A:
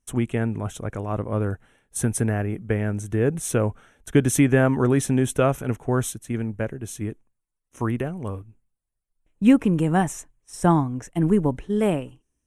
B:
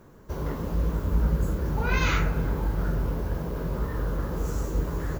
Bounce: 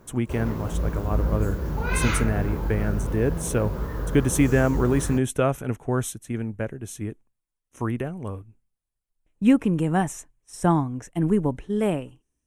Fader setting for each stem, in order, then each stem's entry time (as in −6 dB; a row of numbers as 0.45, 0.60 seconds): −2.0, −0.5 decibels; 0.00, 0.00 seconds